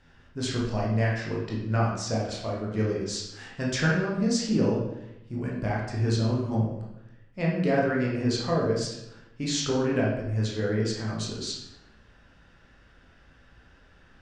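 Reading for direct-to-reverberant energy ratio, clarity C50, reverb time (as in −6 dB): −4.0 dB, 2.5 dB, 0.85 s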